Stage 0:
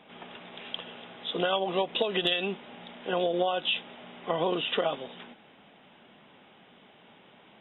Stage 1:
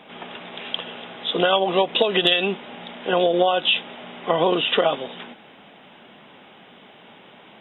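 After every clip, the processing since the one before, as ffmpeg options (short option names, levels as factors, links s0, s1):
-af "lowshelf=f=150:g=-4.5,volume=2.82"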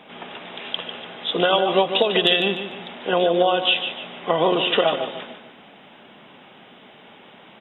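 -af "aecho=1:1:148|296|444|592:0.355|0.131|0.0486|0.018"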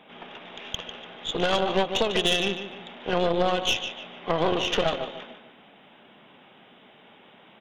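-af "aeval=exprs='(tanh(5.01*val(0)+0.8)-tanh(0.8))/5.01':c=same,volume=0.891"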